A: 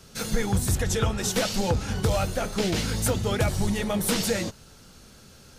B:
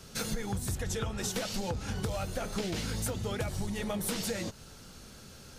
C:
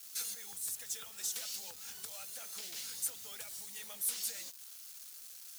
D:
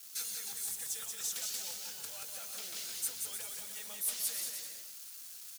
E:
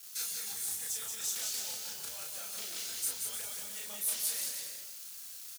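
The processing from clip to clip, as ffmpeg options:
ffmpeg -i in.wav -af "acompressor=threshold=-31dB:ratio=6" out.wav
ffmpeg -i in.wav -af "acrusher=bits=7:mix=0:aa=0.000001,aderivative" out.wav
ffmpeg -i in.wav -af "aecho=1:1:180|306|394.2|455.9|499.2:0.631|0.398|0.251|0.158|0.1" out.wav
ffmpeg -i in.wav -filter_complex "[0:a]asplit=2[link_01][link_02];[link_02]adelay=34,volume=-2dB[link_03];[link_01][link_03]amix=inputs=2:normalize=0" out.wav

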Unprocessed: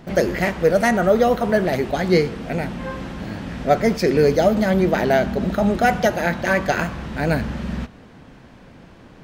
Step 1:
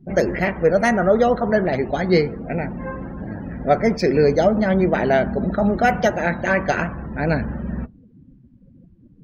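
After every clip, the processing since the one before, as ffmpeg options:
ffmpeg -i in.wav -af "afftdn=noise_reduction=34:noise_floor=-35" out.wav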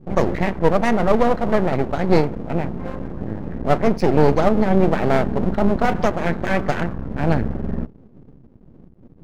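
ffmpeg -i in.wav -af "tiltshelf=frequency=750:gain=5.5,aeval=exprs='max(val(0),0)':channel_layout=same,volume=1.5dB" out.wav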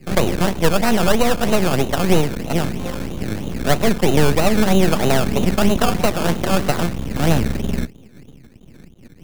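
ffmpeg -i in.wav -filter_complex "[0:a]acrusher=samples=18:mix=1:aa=0.000001:lfo=1:lforange=10.8:lforate=3.1,acrossover=split=180[link_01][link_02];[link_02]acompressor=threshold=-16dB:ratio=6[link_03];[link_01][link_03]amix=inputs=2:normalize=0,volume=3dB" out.wav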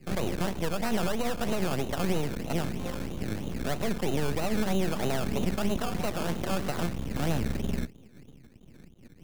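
ffmpeg -i in.wav -af "alimiter=limit=-10dB:level=0:latency=1:release=92,volume=-8.5dB" out.wav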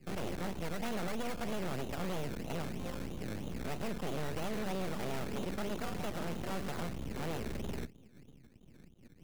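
ffmpeg -i in.wav -af "aeval=exprs='0.0562*(abs(mod(val(0)/0.0562+3,4)-2)-1)':channel_layout=same,volume=-6dB" out.wav

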